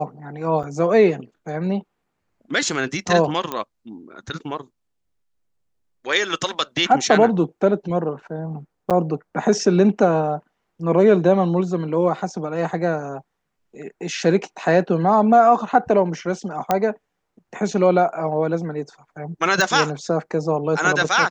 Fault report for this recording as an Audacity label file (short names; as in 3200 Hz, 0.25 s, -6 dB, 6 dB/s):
0.630000	0.640000	gap 6.3 ms
3.520000	3.520000	pop -11 dBFS
8.900000	8.910000	gap 6.9 ms
16.710000	16.710000	pop -5 dBFS
19.610000	19.610000	pop